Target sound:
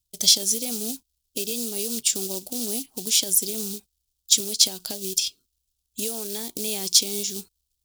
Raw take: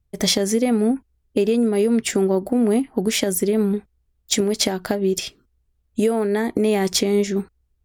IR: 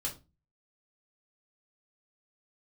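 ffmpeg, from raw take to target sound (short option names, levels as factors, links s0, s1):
-af "highshelf=f=4100:g=-9,acrusher=bits=6:mode=log:mix=0:aa=0.000001,aexciter=amount=14.1:drive=7.8:freq=3000,volume=0.168"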